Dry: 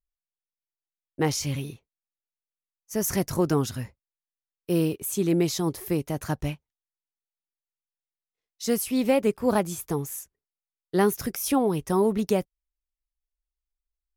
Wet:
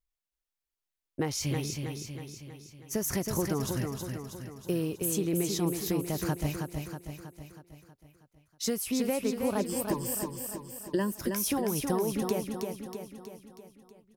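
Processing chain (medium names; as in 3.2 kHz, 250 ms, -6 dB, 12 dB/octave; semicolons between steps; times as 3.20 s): 9.60–11.12 s: rippled EQ curve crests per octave 1.3, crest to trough 17 dB; compression 6:1, threshold -29 dBFS, peak gain reduction 15.5 dB; feedback delay 320 ms, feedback 55%, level -5 dB; trim +1.5 dB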